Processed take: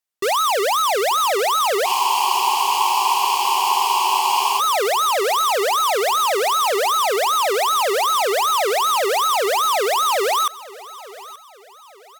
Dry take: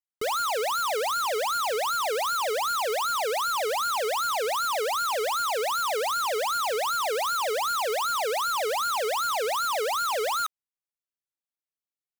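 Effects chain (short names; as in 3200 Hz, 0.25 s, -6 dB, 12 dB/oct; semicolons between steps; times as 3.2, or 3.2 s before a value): on a send: feedback echo 0.878 s, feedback 38%, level -19 dB; on the sum: pitch shift -1.5 st; low shelf 190 Hz -8.5 dB; spectral freeze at 1.89, 2.69 s; gain +9 dB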